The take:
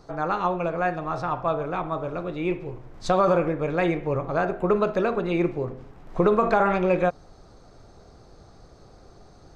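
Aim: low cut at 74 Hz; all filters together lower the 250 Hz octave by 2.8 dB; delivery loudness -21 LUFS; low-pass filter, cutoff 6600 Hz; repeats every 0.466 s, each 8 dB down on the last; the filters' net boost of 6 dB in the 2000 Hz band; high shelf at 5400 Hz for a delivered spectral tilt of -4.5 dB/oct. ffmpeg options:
-af "highpass=74,lowpass=6.6k,equalizer=f=250:t=o:g=-5,equalizer=f=2k:t=o:g=8,highshelf=f=5.4k:g=3.5,aecho=1:1:466|932|1398|1864|2330:0.398|0.159|0.0637|0.0255|0.0102,volume=3dB"

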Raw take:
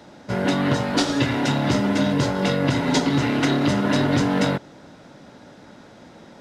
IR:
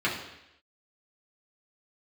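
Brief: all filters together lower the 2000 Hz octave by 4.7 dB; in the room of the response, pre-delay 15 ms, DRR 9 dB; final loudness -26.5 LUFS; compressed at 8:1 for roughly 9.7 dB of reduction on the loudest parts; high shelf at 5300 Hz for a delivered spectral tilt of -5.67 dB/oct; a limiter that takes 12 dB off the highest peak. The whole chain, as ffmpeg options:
-filter_complex "[0:a]equalizer=f=2k:t=o:g=-5.5,highshelf=f=5.3k:g=-6,acompressor=threshold=-26dB:ratio=8,alimiter=level_in=4.5dB:limit=-24dB:level=0:latency=1,volume=-4.5dB,asplit=2[a][b];[1:a]atrim=start_sample=2205,adelay=15[c];[b][c]afir=irnorm=-1:irlink=0,volume=-21dB[d];[a][d]amix=inputs=2:normalize=0,volume=11dB"

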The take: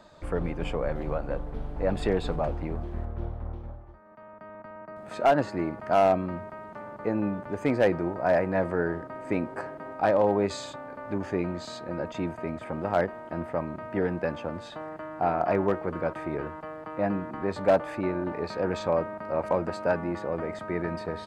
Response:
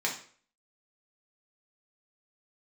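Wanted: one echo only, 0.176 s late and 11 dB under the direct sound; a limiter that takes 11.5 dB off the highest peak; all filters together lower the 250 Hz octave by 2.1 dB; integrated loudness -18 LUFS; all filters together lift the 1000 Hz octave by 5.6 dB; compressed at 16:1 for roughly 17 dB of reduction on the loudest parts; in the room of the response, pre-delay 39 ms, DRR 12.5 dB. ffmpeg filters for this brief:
-filter_complex "[0:a]equalizer=f=250:t=o:g=-3.5,equalizer=f=1k:t=o:g=8.5,acompressor=threshold=-30dB:ratio=16,alimiter=level_in=4.5dB:limit=-24dB:level=0:latency=1,volume=-4.5dB,aecho=1:1:176:0.282,asplit=2[a][b];[1:a]atrim=start_sample=2205,adelay=39[c];[b][c]afir=irnorm=-1:irlink=0,volume=-20dB[d];[a][d]amix=inputs=2:normalize=0,volume=20.5dB"

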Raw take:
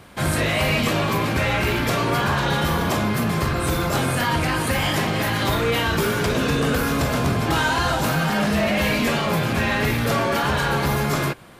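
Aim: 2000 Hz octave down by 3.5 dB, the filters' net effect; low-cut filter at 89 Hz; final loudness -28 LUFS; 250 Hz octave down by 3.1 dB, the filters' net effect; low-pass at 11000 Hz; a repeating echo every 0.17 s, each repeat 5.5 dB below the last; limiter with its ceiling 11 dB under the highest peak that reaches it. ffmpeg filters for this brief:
-af "highpass=89,lowpass=11k,equalizer=f=250:t=o:g=-4,equalizer=f=2k:t=o:g=-4.5,alimiter=limit=-22dB:level=0:latency=1,aecho=1:1:170|340|510|680|850|1020|1190:0.531|0.281|0.149|0.079|0.0419|0.0222|0.0118,volume=0.5dB"

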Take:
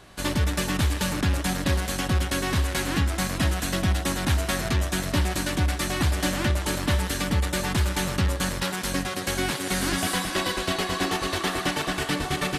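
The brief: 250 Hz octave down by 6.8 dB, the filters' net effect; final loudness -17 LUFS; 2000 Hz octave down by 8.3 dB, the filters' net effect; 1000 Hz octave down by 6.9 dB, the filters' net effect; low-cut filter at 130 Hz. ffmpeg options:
-af "highpass=130,equalizer=f=250:t=o:g=-8.5,equalizer=f=1k:t=o:g=-6.5,equalizer=f=2k:t=o:g=-8.5,volume=13.5dB"

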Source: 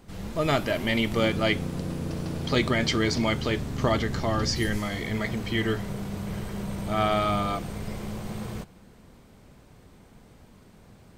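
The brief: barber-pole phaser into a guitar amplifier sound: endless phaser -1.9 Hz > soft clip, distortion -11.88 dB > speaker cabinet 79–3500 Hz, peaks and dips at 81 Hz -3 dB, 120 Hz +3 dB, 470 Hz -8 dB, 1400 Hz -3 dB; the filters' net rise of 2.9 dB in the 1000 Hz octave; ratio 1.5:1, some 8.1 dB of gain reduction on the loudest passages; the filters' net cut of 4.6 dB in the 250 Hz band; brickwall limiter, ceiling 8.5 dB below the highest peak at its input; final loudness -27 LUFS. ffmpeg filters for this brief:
-filter_complex "[0:a]equalizer=f=250:t=o:g=-6,equalizer=f=1k:t=o:g=6,acompressor=threshold=-41dB:ratio=1.5,alimiter=level_in=1dB:limit=-24dB:level=0:latency=1,volume=-1dB,asplit=2[a][b];[b]afreqshift=-1.9[c];[a][c]amix=inputs=2:normalize=1,asoftclip=threshold=-36.5dB,highpass=79,equalizer=f=81:t=q:w=4:g=-3,equalizer=f=120:t=q:w=4:g=3,equalizer=f=470:t=q:w=4:g=-8,equalizer=f=1.4k:t=q:w=4:g=-3,lowpass=f=3.5k:w=0.5412,lowpass=f=3.5k:w=1.3066,volume=17dB"

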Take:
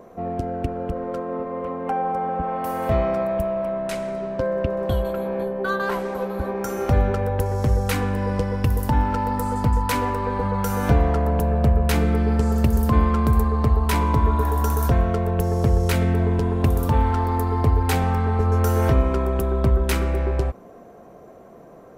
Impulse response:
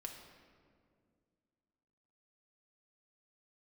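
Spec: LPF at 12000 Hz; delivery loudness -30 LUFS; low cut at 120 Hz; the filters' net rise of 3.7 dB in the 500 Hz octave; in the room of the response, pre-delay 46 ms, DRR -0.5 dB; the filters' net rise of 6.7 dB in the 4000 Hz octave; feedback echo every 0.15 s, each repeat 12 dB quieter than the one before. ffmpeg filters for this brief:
-filter_complex "[0:a]highpass=120,lowpass=12k,equalizer=f=500:t=o:g=4.5,equalizer=f=4k:t=o:g=8.5,aecho=1:1:150|300|450:0.251|0.0628|0.0157,asplit=2[a][b];[1:a]atrim=start_sample=2205,adelay=46[c];[b][c]afir=irnorm=-1:irlink=0,volume=4dB[d];[a][d]amix=inputs=2:normalize=0,volume=-12.5dB"

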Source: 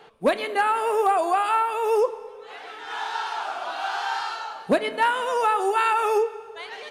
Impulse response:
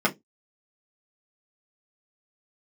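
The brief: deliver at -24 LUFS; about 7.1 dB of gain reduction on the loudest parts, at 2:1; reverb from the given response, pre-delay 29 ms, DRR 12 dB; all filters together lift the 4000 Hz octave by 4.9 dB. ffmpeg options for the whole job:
-filter_complex "[0:a]equalizer=f=4k:t=o:g=6.5,acompressor=threshold=-29dB:ratio=2,asplit=2[a][b];[1:a]atrim=start_sample=2205,adelay=29[c];[b][c]afir=irnorm=-1:irlink=0,volume=-26.5dB[d];[a][d]amix=inputs=2:normalize=0,volume=4.5dB"

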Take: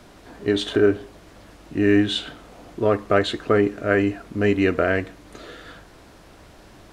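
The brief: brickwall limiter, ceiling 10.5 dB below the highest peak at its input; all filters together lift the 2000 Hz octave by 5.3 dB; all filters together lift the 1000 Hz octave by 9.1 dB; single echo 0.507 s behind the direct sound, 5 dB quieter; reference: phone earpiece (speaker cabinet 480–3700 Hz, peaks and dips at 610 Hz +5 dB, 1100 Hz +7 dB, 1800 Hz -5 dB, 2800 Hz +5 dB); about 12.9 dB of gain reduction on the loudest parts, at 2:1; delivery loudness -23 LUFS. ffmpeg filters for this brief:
-af "equalizer=f=1k:t=o:g=6.5,equalizer=f=2k:t=o:g=6.5,acompressor=threshold=-35dB:ratio=2,alimiter=limit=-23dB:level=0:latency=1,highpass=480,equalizer=f=610:t=q:w=4:g=5,equalizer=f=1.1k:t=q:w=4:g=7,equalizer=f=1.8k:t=q:w=4:g=-5,equalizer=f=2.8k:t=q:w=4:g=5,lowpass=f=3.7k:w=0.5412,lowpass=f=3.7k:w=1.3066,aecho=1:1:507:0.562,volume=13.5dB"

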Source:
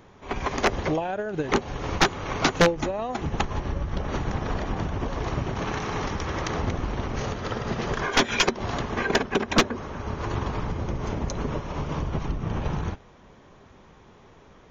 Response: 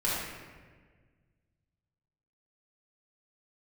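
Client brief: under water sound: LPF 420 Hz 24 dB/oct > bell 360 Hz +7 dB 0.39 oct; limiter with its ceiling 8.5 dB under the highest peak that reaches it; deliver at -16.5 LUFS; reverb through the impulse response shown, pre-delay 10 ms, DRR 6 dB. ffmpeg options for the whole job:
-filter_complex "[0:a]alimiter=limit=-19dB:level=0:latency=1,asplit=2[a][b];[1:a]atrim=start_sample=2205,adelay=10[c];[b][c]afir=irnorm=-1:irlink=0,volume=-15.5dB[d];[a][d]amix=inputs=2:normalize=0,lowpass=f=420:w=0.5412,lowpass=f=420:w=1.3066,equalizer=f=360:t=o:w=0.39:g=7,volume=14dB"

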